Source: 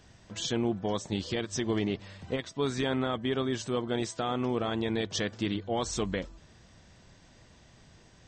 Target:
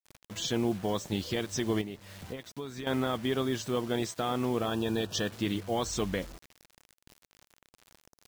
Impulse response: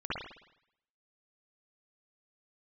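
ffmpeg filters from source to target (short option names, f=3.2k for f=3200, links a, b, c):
-filter_complex "[0:a]acrusher=bits=7:mix=0:aa=0.000001,asettb=1/sr,asplit=3[a][b][c];[a]atrim=end=1.814[d];[b]atrim=start=1.81:end=2.87,asetpts=PTS-STARTPTS,afade=t=in:d=0.004:c=qsin,afade=t=out:st=1.056:d=0.004:c=qsin,acompressor=threshold=-38dB:ratio=4[e];[c]atrim=start=2.866[f];[d][e]acrossfade=d=0.004:c1=hsin:c2=qsin[g];[g][f]acrossfade=d=0.004:c1=qsin:c2=hsin,asettb=1/sr,asplit=3[h][i][j];[h]atrim=end=4.664[k];[i]atrim=start=4.66:end=5.31,asetpts=PTS-STARTPTS,afade=t=in:d=0.004:c=qsin,afade=t=out:st=0.646:d=0.004:c=qsin,asuperstop=centerf=2100:order=12:qfactor=4.1[l];[j]atrim=start=5.306[m];[k][l]acrossfade=d=0.004:c1=hsin:c2=qsin[n];[n][m]acrossfade=d=0.004:c1=qsin:c2=hsin"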